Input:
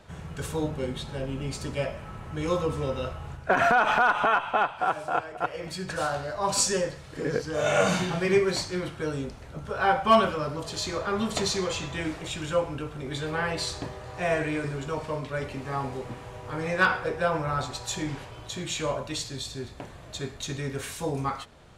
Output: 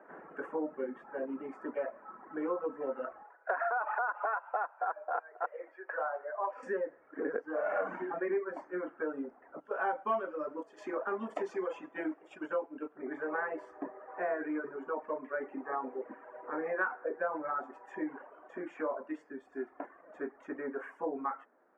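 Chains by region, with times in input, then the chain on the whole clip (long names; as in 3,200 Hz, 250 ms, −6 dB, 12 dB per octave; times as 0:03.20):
0:03.22–0:06.63: inverse Chebyshev high-pass filter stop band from 180 Hz, stop band 50 dB + high-frequency loss of the air 220 metres
0:09.60–0:12.97: noise gate −35 dBFS, range −6 dB + high shelf with overshoot 2,500 Hz +10 dB, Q 1.5
0:19.52–0:20.02: high-shelf EQ 3,700 Hz +10 dB + comb filter 2.9 ms, depth 31% + floating-point word with a short mantissa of 2 bits
whole clip: reverb reduction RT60 1.4 s; elliptic band-pass filter 270–1,700 Hz, stop band 40 dB; downward compressor 3 to 1, threshold −32 dBFS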